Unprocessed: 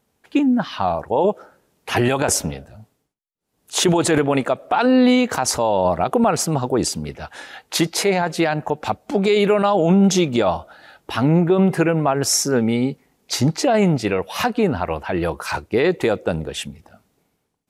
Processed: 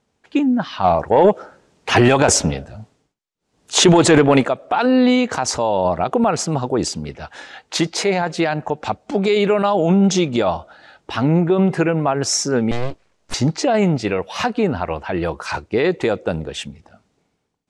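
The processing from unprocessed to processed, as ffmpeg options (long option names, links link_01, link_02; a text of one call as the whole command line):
ffmpeg -i in.wav -filter_complex "[0:a]asplit=3[link_01][link_02][link_03];[link_01]afade=type=out:start_time=0.83:duration=0.02[link_04];[link_02]acontrast=68,afade=type=in:start_time=0.83:duration=0.02,afade=type=out:start_time=4.46:duration=0.02[link_05];[link_03]afade=type=in:start_time=4.46:duration=0.02[link_06];[link_04][link_05][link_06]amix=inputs=3:normalize=0,asettb=1/sr,asplit=3[link_07][link_08][link_09];[link_07]atrim=end=12.714[link_10];[link_08]atrim=start=12.71:end=13.34,asetpts=PTS-STARTPTS,afade=type=in:duration=0.004:curve=qsin,afade=type=out:start_time=0.626:duration=0.004:curve=qsin,aeval=exprs='abs(val(0))':channel_layout=same[link_11];[link_09]atrim=start=13.336[link_12];[link_10][link_11]acrossfade=duration=0.004:curve1=hsin:curve2=qsin[link_13];[link_13][link_12]acrossfade=duration=0.004:curve1=qsin:curve2=hsin,lowpass=frequency=7900:width=0.5412,lowpass=frequency=7900:width=1.3066" out.wav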